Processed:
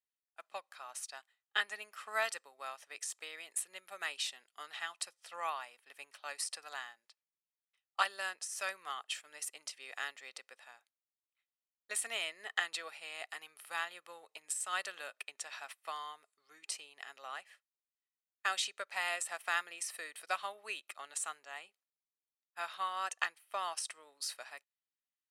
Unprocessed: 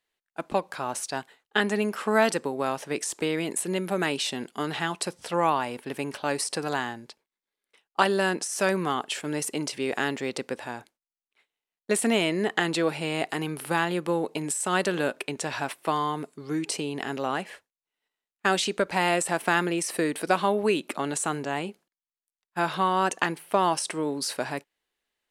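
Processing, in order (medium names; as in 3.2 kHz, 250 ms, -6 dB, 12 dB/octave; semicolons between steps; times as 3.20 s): high-pass 1.2 kHz 12 dB/octave; comb 1.6 ms, depth 34%; upward expansion 1.5:1, over -51 dBFS; trim -5 dB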